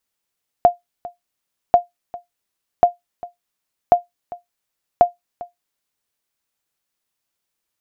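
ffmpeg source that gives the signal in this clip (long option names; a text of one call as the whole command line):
ffmpeg -f lavfi -i "aevalsrc='0.794*(sin(2*PI*703*mod(t,1.09))*exp(-6.91*mod(t,1.09)/0.15)+0.1*sin(2*PI*703*max(mod(t,1.09)-0.4,0))*exp(-6.91*max(mod(t,1.09)-0.4,0)/0.15))':duration=5.45:sample_rate=44100" out.wav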